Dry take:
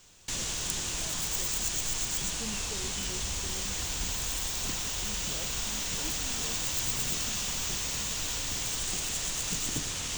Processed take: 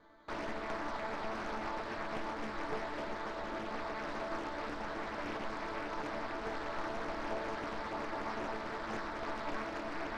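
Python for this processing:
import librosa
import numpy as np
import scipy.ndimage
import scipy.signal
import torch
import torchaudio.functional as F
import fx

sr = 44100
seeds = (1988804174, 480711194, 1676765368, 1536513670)

p1 = scipy.signal.sosfilt(scipy.signal.butter(4, 360.0, 'highpass', fs=sr, output='sos'), x)
p2 = fx.high_shelf(p1, sr, hz=3600.0, db=-10.5)
p3 = fx.rider(p2, sr, range_db=10, speed_s=0.5)
p4 = p2 + (p3 * 10.0 ** (2.0 / 20.0))
p5 = fx.sample_hold(p4, sr, seeds[0], rate_hz=2700.0, jitter_pct=0)
p6 = fx.air_absorb(p5, sr, metres=220.0)
p7 = fx.resonator_bank(p6, sr, root=57, chord='sus4', decay_s=0.26)
p8 = p7 + 10.0 ** (-12.0 / 20.0) * np.pad(p7, (int(537 * sr / 1000.0), 0))[:len(p7)]
p9 = fx.doppler_dist(p8, sr, depth_ms=0.8)
y = p9 * 10.0 ** (11.0 / 20.0)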